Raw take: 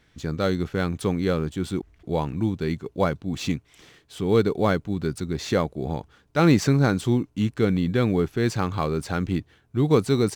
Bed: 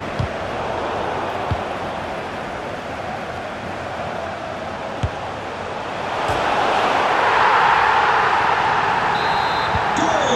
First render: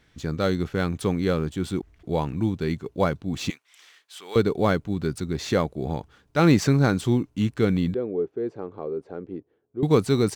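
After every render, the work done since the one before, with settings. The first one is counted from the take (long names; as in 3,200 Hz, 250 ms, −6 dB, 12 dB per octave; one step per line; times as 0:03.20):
0:03.50–0:04.36: high-pass filter 1,100 Hz
0:07.94–0:09.83: resonant band-pass 430 Hz, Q 2.8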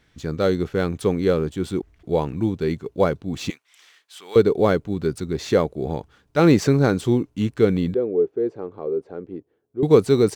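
dynamic equaliser 440 Hz, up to +7 dB, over −35 dBFS, Q 1.5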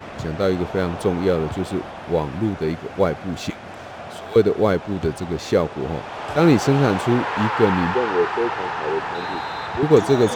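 mix in bed −9 dB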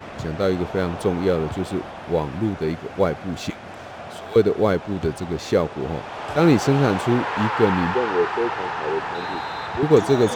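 level −1 dB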